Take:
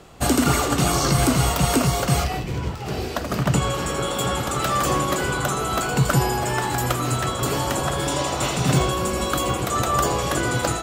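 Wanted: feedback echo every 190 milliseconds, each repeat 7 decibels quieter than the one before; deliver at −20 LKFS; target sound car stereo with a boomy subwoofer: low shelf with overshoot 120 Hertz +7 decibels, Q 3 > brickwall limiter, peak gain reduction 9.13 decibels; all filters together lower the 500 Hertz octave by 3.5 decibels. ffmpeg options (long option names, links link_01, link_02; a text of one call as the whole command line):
ffmpeg -i in.wav -af "lowshelf=frequency=120:width_type=q:width=3:gain=7,equalizer=frequency=500:width_type=o:gain=-4,aecho=1:1:190|380|570|760|950:0.447|0.201|0.0905|0.0407|0.0183,volume=2.5dB,alimiter=limit=-10dB:level=0:latency=1" out.wav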